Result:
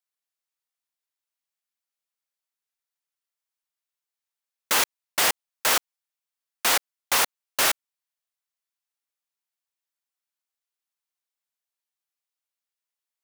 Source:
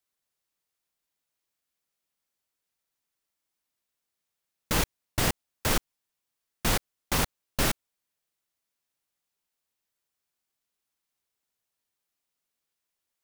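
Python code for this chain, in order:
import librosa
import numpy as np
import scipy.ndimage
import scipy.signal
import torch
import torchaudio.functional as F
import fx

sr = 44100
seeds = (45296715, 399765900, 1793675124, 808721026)

y = scipy.signal.sosfilt(scipy.signal.butter(2, 680.0, 'highpass', fs=sr, output='sos'), x)
y = fx.leveller(y, sr, passes=3)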